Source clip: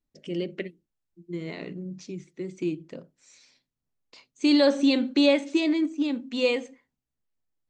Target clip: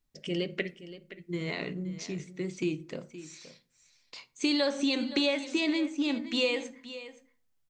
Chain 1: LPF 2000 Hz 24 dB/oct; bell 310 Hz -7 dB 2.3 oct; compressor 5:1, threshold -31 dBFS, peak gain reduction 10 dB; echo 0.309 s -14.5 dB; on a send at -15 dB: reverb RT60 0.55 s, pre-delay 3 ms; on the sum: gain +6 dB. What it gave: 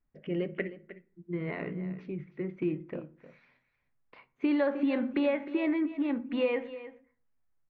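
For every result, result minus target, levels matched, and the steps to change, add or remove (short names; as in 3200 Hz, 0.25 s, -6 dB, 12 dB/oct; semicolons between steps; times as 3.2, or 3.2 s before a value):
echo 0.212 s early; 2000 Hz band -3.5 dB
change: echo 0.521 s -14.5 dB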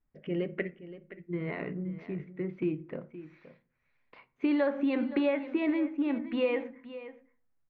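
2000 Hz band -3.5 dB
remove: LPF 2000 Hz 24 dB/oct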